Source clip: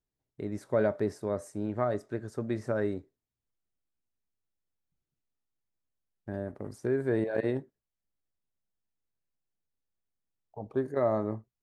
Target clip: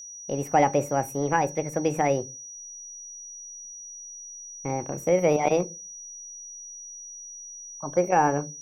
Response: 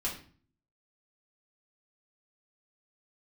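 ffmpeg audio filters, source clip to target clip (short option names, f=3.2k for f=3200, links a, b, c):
-filter_complex "[0:a]asetrate=59535,aresample=44100,asplit=2[a][b];[b]aemphasis=mode=reproduction:type=bsi[c];[1:a]atrim=start_sample=2205,asetrate=79380,aresample=44100,lowpass=1k[d];[c][d]afir=irnorm=-1:irlink=0,volume=-14.5dB[e];[a][e]amix=inputs=2:normalize=0,aeval=exprs='val(0)+0.00501*sin(2*PI*5800*n/s)':c=same,volume=7dB"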